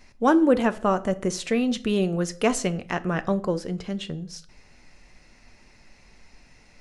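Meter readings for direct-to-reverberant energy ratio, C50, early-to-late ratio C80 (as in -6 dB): 11.0 dB, 19.0 dB, 23.5 dB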